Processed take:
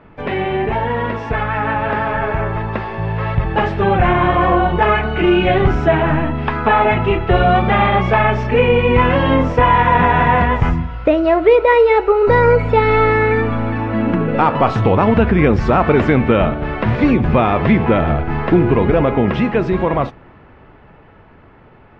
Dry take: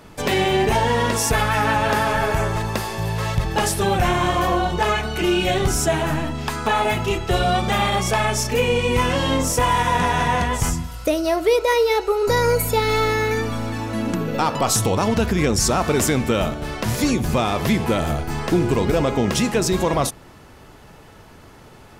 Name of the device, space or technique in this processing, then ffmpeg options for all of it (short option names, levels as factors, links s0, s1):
action camera in a waterproof case: -af "lowpass=f=2500:w=0.5412,lowpass=f=2500:w=1.3066,dynaudnorm=f=600:g=11:m=3.76" -ar 32000 -c:a aac -b:a 64k